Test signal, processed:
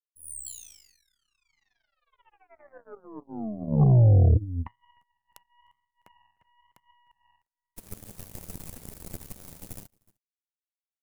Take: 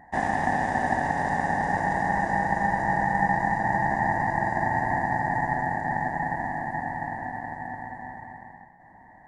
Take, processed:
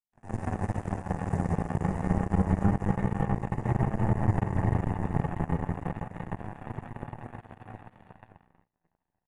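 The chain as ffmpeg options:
ffmpeg -i in.wav -filter_complex "[0:a]aecho=1:1:303:0.316,flanger=delay=8.1:depth=4.1:regen=3:speed=0.28:shape=triangular,acrossover=split=150[link_01][link_02];[link_02]acompressor=threshold=-37dB:ratio=10[link_03];[link_01][link_03]amix=inputs=2:normalize=0,bass=frequency=250:gain=-3,treble=frequency=4000:gain=15,flanger=delay=4.4:depth=7.6:regen=80:speed=1:shape=sinusoidal,firequalizer=gain_entry='entry(180,0);entry(280,-8);entry(1400,-22);entry(2100,-20);entry(3300,-28);entry(10000,-18)':delay=0.05:min_phase=1,dynaudnorm=framelen=170:gausssize=3:maxgain=15.5dB,aeval=exprs='0.133*(cos(1*acos(clip(val(0)/0.133,-1,1)))-cos(1*PI/2))+0.00668*(cos(5*acos(clip(val(0)/0.133,-1,1)))-cos(5*PI/2))+0.00473*(cos(6*acos(clip(val(0)/0.133,-1,1)))-cos(6*PI/2))+0.0237*(cos(7*acos(clip(val(0)/0.133,-1,1)))-cos(7*PI/2))+0.00106*(cos(8*acos(clip(val(0)/0.133,-1,1)))-cos(8*PI/2))':channel_layout=same,volume=6.5dB" out.wav

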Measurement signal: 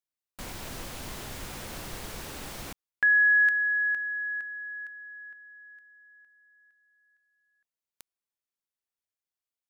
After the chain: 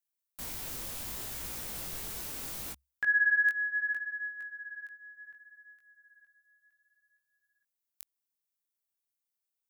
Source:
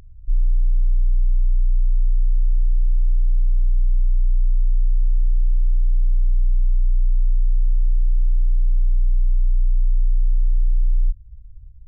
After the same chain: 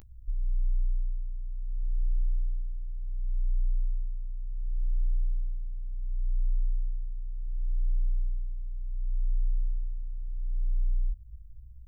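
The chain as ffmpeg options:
ffmpeg -i in.wav -af "equalizer=frequency=67:width=6.5:gain=4.5,flanger=delay=17:depth=4.9:speed=0.69,aemphasis=mode=production:type=50kf,volume=-3.5dB" out.wav

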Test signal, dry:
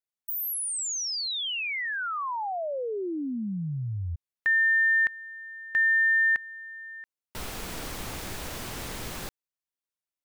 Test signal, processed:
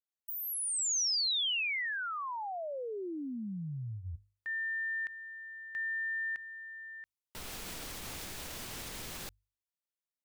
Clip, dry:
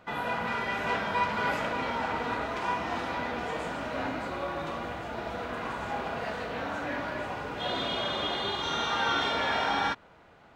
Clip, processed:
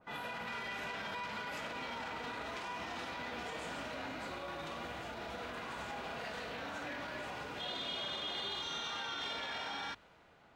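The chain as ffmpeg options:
ffmpeg -i in.wav -af "bandreject=frequency=50:width_type=h:width=6,bandreject=frequency=100:width_type=h:width=6,alimiter=level_in=4dB:limit=-24dB:level=0:latency=1:release=33,volume=-4dB,adynamicequalizer=threshold=0.00501:dfrequency=2000:dqfactor=0.7:tfrequency=2000:tqfactor=0.7:attack=5:release=100:ratio=0.417:range=4:mode=boostabove:tftype=highshelf,volume=-7.5dB" out.wav

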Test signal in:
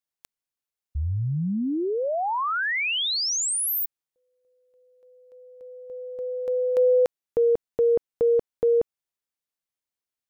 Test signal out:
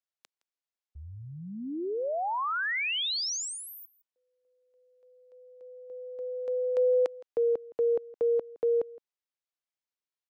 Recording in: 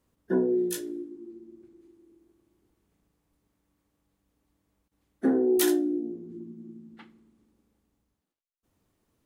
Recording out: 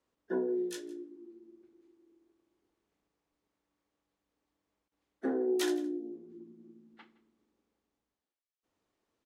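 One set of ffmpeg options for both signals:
ffmpeg -i in.wav -filter_complex "[0:a]acrossover=split=300 7400:gain=0.224 1 0.141[link_01][link_02][link_03];[link_01][link_02][link_03]amix=inputs=3:normalize=0,aecho=1:1:165:0.0891,volume=-4.5dB" out.wav

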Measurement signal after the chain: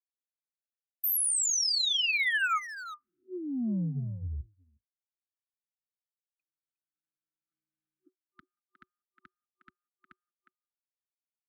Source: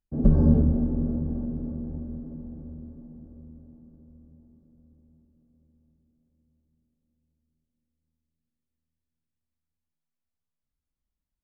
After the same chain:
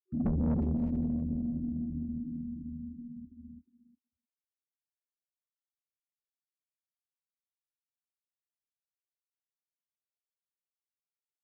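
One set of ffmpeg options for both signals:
ffmpeg -i in.wav -filter_complex "[0:a]bandreject=frequency=50:width_type=h:width=6,bandreject=frequency=100:width_type=h:width=6,bandreject=frequency=150:width_type=h:width=6,afftfilt=real='re*gte(hypot(re,im),0.0282)':imag='im*gte(hypot(re,im),0.0282)':win_size=1024:overlap=0.75,agate=range=-30dB:threshold=-47dB:ratio=16:detection=peak,afftfilt=real='re*(1-between(b*sr/4096,370,1200))':imag='im*(1-between(b*sr/4096,370,1200))':win_size=4096:overlap=0.75,highpass=76,aecho=1:1:4.6:0.42,acrossover=split=230|670[link_01][link_02][link_03];[link_01]asoftclip=type=tanh:threshold=-27dB[link_04];[link_02]acompressor=threshold=-39dB:ratio=16[link_05];[link_04][link_05][link_03]amix=inputs=3:normalize=0,asplit=2[link_06][link_07];[link_07]adelay=360,highpass=300,lowpass=3400,asoftclip=type=hard:threshold=-30.5dB,volume=-9dB[link_08];[link_06][link_08]amix=inputs=2:normalize=0" out.wav

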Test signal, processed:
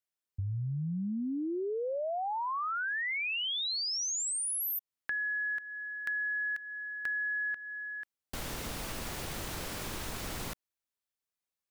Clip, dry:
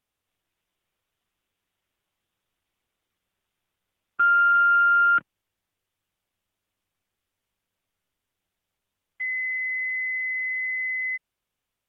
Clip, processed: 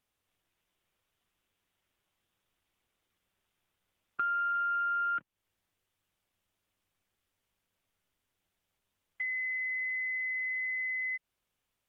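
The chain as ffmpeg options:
ffmpeg -i in.wav -af "acompressor=threshold=-35dB:ratio=3" out.wav

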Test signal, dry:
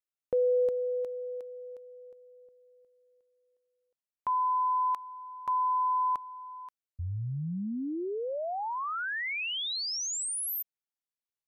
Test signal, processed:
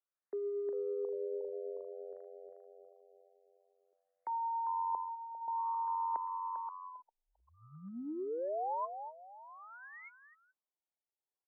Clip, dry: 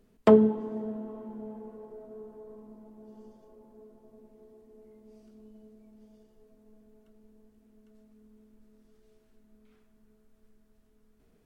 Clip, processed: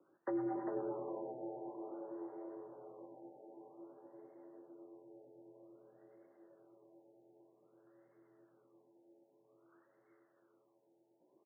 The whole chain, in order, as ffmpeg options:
ffmpeg -i in.wav -filter_complex "[0:a]highpass=frequency=370:width_type=q:width=0.5412,highpass=frequency=370:width_type=q:width=1.307,lowpass=frequency=3300:width_type=q:width=0.5176,lowpass=frequency=3300:width_type=q:width=0.7071,lowpass=frequency=3300:width_type=q:width=1.932,afreqshift=-91,acrossover=split=540[link_01][link_02];[link_02]asoftclip=type=tanh:threshold=-28.5dB[link_03];[link_01][link_03]amix=inputs=2:normalize=0,acrossover=split=730[link_04][link_05];[link_04]aeval=exprs='val(0)*(1-0.5/2+0.5/2*cos(2*PI*8.9*n/s))':channel_layout=same[link_06];[link_05]aeval=exprs='val(0)*(1-0.5/2-0.5/2*cos(2*PI*8.9*n/s))':channel_layout=same[link_07];[link_06][link_07]amix=inputs=2:normalize=0,areverse,acompressor=threshold=-44dB:ratio=8:attack=52:release=21:knee=6:detection=peak,areverse,aemphasis=mode=production:type=bsi,asplit=5[link_08][link_09][link_10][link_11][link_12];[link_09]adelay=398,afreqshift=91,volume=-7.5dB[link_13];[link_10]adelay=796,afreqshift=182,volume=-16.9dB[link_14];[link_11]adelay=1194,afreqshift=273,volume=-26.2dB[link_15];[link_12]adelay=1592,afreqshift=364,volume=-35.6dB[link_16];[link_08][link_13][link_14][link_15][link_16]amix=inputs=5:normalize=0,afftfilt=real='re*lt(b*sr/1024,910*pow(2200/910,0.5+0.5*sin(2*PI*0.52*pts/sr)))':imag='im*lt(b*sr/1024,910*pow(2200/910,0.5+0.5*sin(2*PI*0.52*pts/sr)))':win_size=1024:overlap=0.75,volume=5dB" out.wav

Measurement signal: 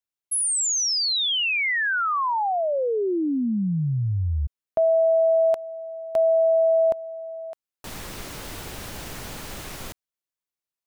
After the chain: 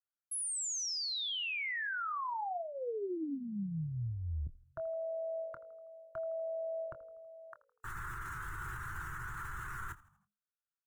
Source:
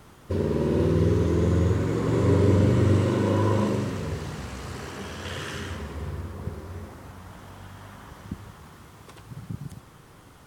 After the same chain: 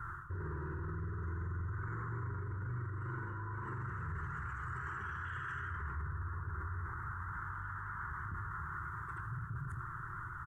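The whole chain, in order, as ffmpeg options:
ffmpeg -i in.wav -filter_complex "[0:a]firequalizer=gain_entry='entry(130,0);entry(240,-27);entry(340,-9);entry(590,-28);entry(960,-2);entry(1400,11);entry(2300,-12);entry(4800,-16);entry(7000,-8)':delay=0.05:min_phase=1,areverse,acompressor=threshold=-36dB:ratio=6:attack=0.17:release=174:knee=6:detection=rms,areverse,afftdn=noise_reduction=15:noise_floor=-61,alimiter=level_in=17dB:limit=-24dB:level=0:latency=1:release=24,volume=-17dB,asplit=2[link_01][link_02];[link_02]adelay=25,volume=-12.5dB[link_03];[link_01][link_03]amix=inputs=2:normalize=0,asplit=5[link_04][link_05][link_06][link_07][link_08];[link_05]adelay=81,afreqshift=-52,volume=-19.5dB[link_09];[link_06]adelay=162,afreqshift=-104,volume=-25.5dB[link_10];[link_07]adelay=243,afreqshift=-156,volume=-31.5dB[link_11];[link_08]adelay=324,afreqshift=-208,volume=-37.6dB[link_12];[link_04][link_09][link_10][link_11][link_12]amix=inputs=5:normalize=0,volume=6.5dB" out.wav

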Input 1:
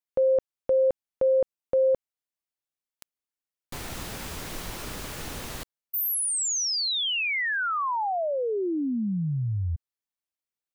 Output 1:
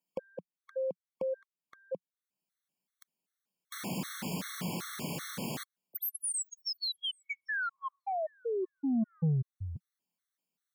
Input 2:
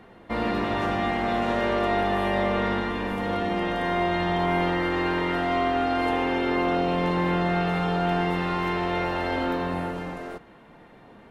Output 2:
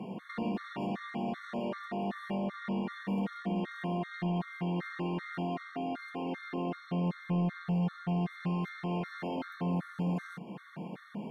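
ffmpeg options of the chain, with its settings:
ffmpeg -i in.wav -af "highpass=frequency=140:width=0.5412,highpass=frequency=140:width=1.3066,acompressor=threshold=-36dB:ratio=12:attack=4.2:release=407:knee=6:detection=rms,equalizer=frequency=180:width_type=o:width=0.82:gain=12.5,asoftclip=type=tanh:threshold=-29dB,afftfilt=real='re*gt(sin(2*PI*2.6*pts/sr)*(1-2*mod(floor(b*sr/1024/1100),2)),0)':imag='im*gt(sin(2*PI*2.6*pts/sr)*(1-2*mod(floor(b*sr/1024/1100),2)),0)':win_size=1024:overlap=0.75,volume=5.5dB" out.wav

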